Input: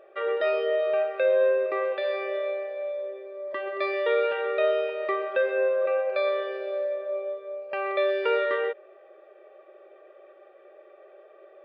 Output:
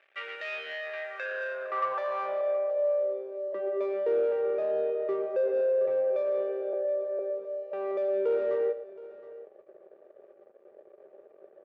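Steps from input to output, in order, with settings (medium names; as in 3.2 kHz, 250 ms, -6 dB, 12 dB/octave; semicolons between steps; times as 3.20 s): 1.82–2.41 s: peaking EQ 1.1 kHz +11.5 dB 0.84 oct; 6.73–7.19 s: Chebyshev high-pass 260 Hz, order 6; waveshaping leveller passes 3; band-pass sweep 2.4 kHz -> 440 Hz, 0.67–3.22 s; multi-tap echo 111/720 ms -14/-18.5 dB; trim -6 dB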